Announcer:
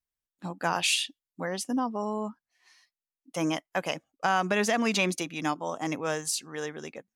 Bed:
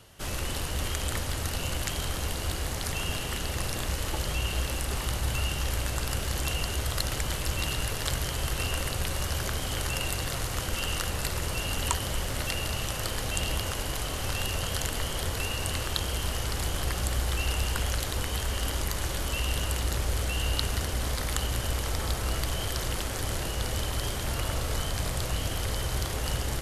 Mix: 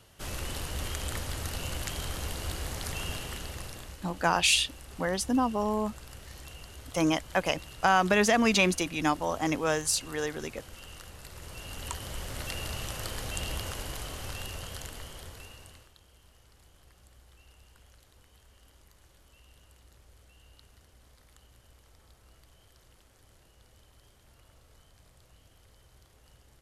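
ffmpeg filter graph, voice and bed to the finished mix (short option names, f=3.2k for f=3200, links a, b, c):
-filter_complex "[0:a]adelay=3600,volume=2.5dB[a];[1:a]volume=7.5dB,afade=t=out:st=3.06:d=0.93:silence=0.237137,afade=t=in:st=11.26:d=1.37:silence=0.266073,afade=t=out:st=13.67:d=2.26:silence=0.0595662[b];[a][b]amix=inputs=2:normalize=0"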